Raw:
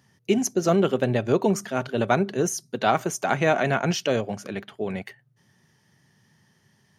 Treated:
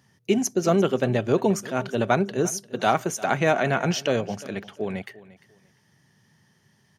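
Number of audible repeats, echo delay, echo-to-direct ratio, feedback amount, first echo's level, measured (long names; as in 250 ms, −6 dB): 2, 348 ms, −19.0 dB, 23%, −19.0 dB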